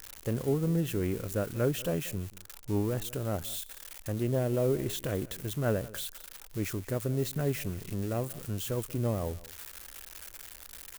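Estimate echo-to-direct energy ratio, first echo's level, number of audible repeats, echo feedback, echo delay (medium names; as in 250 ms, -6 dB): -19.5 dB, -19.5 dB, 1, no regular repeats, 185 ms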